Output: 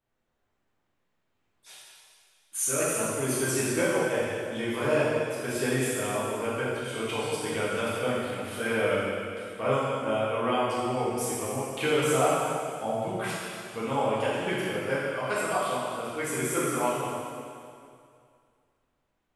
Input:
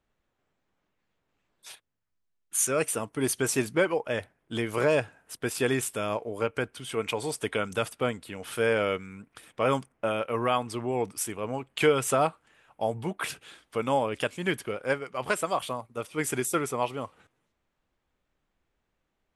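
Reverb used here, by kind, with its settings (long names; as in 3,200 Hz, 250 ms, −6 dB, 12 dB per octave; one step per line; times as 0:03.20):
dense smooth reverb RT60 2.3 s, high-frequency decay 0.95×, DRR −9 dB
level −8.5 dB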